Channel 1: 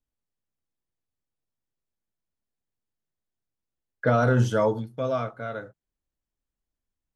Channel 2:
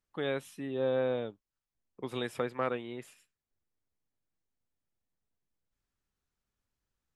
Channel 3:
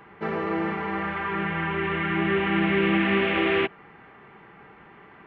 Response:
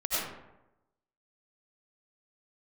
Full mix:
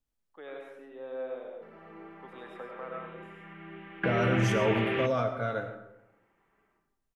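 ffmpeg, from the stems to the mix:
-filter_complex "[0:a]alimiter=limit=-21.5dB:level=0:latency=1:release=22,volume=0dB,asplit=3[link_01][link_02][link_03];[link_02]volume=-16dB[link_04];[1:a]acrossover=split=310 2700:gain=0.0708 1 0.2[link_05][link_06][link_07];[link_05][link_06][link_07]amix=inputs=3:normalize=0,adelay=200,volume=-13dB,asplit=2[link_08][link_09];[link_09]volume=-5.5dB[link_10];[2:a]acontrast=38,adelay=1400,volume=-14dB,asplit=2[link_11][link_12];[link_12]volume=-23.5dB[link_13];[link_03]apad=whole_len=293731[link_14];[link_11][link_14]sidechaingate=range=-23dB:threshold=-47dB:ratio=16:detection=peak[link_15];[3:a]atrim=start_sample=2205[link_16];[link_04][link_10][link_13]amix=inputs=3:normalize=0[link_17];[link_17][link_16]afir=irnorm=-1:irlink=0[link_18];[link_01][link_08][link_15][link_18]amix=inputs=4:normalize=0"

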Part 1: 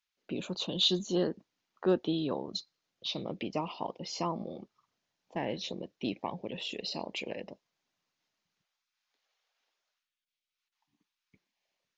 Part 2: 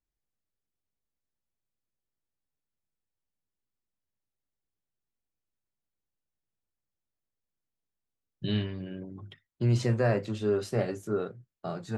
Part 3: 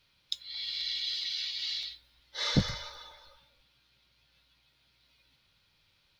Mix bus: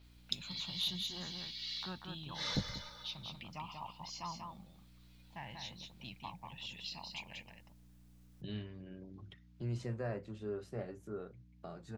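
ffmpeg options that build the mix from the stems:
ffmpeg -i stem1.wav -i stem2.wav -i stem3.wav -filter_complex "[0:a]firequalizer=gain_entry='entry(110,0);entry(290,-22);entry(460,-26);entry(860,-4)':delay=0.05:min_phase=1,asoftclip=type=tanh:threshold=-26.5dB,aeval=exprs='val(0)+0.00141*(sin(2*PI*60*n/s)+sin(2*PI*2*60*n/s)/2+sin(2*PI*3*60*n/s)/3+sin(2*PI*4*60*n/s)/4+sin(2*PI*5*60*n/s)/5)':channel_layout=same,volume=-3dB,asplit=3[link_01][link_02][link_03];[link_02]volume=-4.5dB[link_04];[1:a]acompressor=mode=upward:threshold=-30dB:ratio=2.5,adynamicequalizer=threshold=0.00224:dfrequency=2600:dqfactor=0.7:tfrequency=2600:tqfactor=0.7:attack=5:release=100:ratio=0.375:range=3.5:mode=cutabove:tftype=highshelf,volume=-13.5dB[link_05];[2:a]volume=-2dB,asplit=2[link_06][link_07];[link_07]volume=-23dB[link_08];[link_03]apad=whole_len=273233[link_09];[link_06][link_09]sidechaincompress=threshold=-48dB:ratio=8:attack=40:release=1370[link_10];[link_04][link_08]amix=inputs=2:normalize=0,aecho=0:1:189:1[link_11];[link_01][link_05][link_10][link_11]amix=inputs=4:normalize=0" out.wav

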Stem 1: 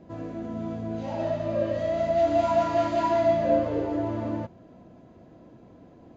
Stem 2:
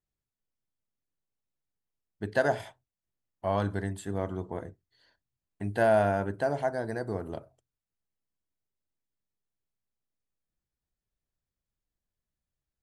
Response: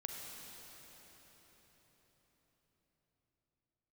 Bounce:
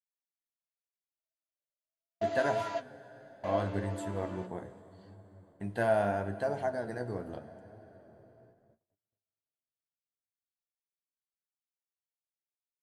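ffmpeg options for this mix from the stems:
-filter_complex "[0:a]highpass=frequency=1200:poles=1,volume=0dB[link_01];[1:a]volume=-2.5dB,asplit=3[link_02][link_03][link_04];[link_03]volume=-7.5dB[link_05];[link_04]apad=whole_len=271666[link_06];[link_01][link_06]sidechaingate=range=-33dB:threshold=-56dB:ratio=16:detection=peak[link_07];[2:a]atrim=start_sample=2205[link_08];[link_05][link_08]afir=irnorm=-1:irlink=0[link_09];[link_07][link_02][link_09]amix=inputs=3:normalize=0,agate=range=-38dB:threshold=-56dB:ratio=16:detection=peak,flanger=delay=9.3:depth=7.5:regen=45:speed=0.77:shape=sinusoidal"

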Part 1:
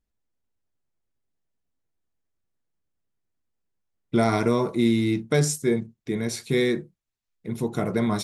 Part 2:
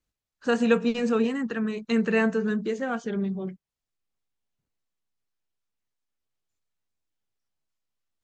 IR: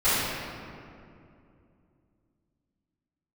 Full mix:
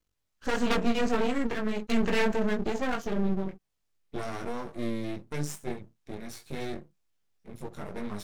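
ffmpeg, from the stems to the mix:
-filter_complex "[0:a]volume=-5.5dB[link_01];[1:a]aeval=exprs='0.398*sin(PI/2*3.16*val(0)/0.398)':channel_layout=same,volume=-6dB[link_02];[link_01][link_02]amix=inputs=2:normalize=0,flanger=delay=19.5:depth=2:speed=1.7,aeval=exprs='max(val(0),0)':channel_layout=same"

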